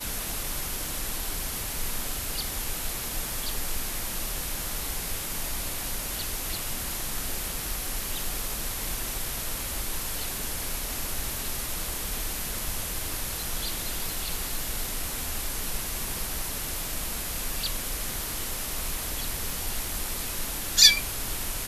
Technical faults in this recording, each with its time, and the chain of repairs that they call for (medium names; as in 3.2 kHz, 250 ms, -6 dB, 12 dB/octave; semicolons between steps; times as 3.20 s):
19.50 s: pop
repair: de-click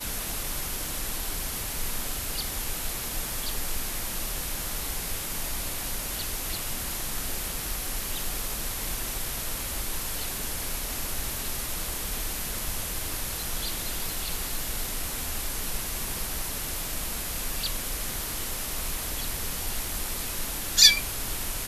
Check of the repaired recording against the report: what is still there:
nothing left